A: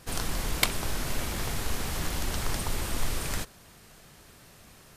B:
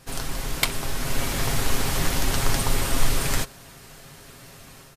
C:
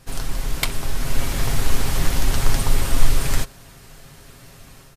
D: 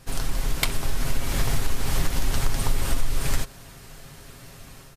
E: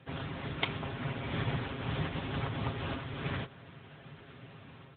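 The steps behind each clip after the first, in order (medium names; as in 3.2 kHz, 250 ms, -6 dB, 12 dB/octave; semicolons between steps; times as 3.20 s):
comb 7.4 ms, depth 44%; level rider gain up to 7 dB
bass shelf 100 Hz +8.5 dB; trim -1 dB
compression 5:1, threshold -16 dBFS, peak gain reduction 10.5 dB
trim -2.5 dB; AMR-NB 10.2 kbps 8 kHz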